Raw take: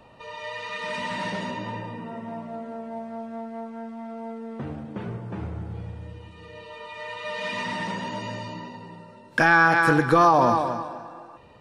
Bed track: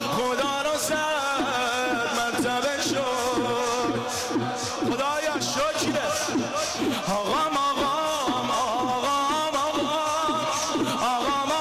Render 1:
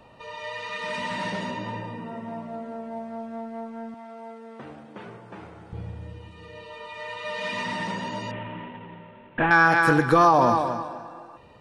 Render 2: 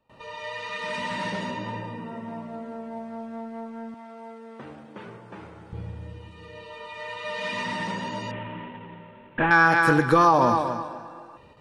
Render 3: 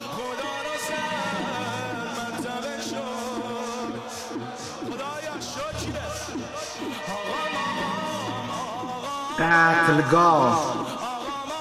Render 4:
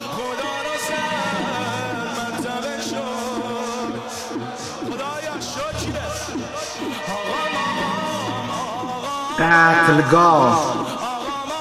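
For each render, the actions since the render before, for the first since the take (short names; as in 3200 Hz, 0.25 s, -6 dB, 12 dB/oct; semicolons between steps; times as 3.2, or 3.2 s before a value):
3.94–5.73 HPF 650 Hz 6 dB/oct; 8.31–9.51 CVSD 16 kbps
gate with hold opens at -42 dBFS; notch 710 Hz, Q 12
add bed track -7 dB
gain +5 dB; limiter -3 dBFS, peak gain reduction 1.5 dB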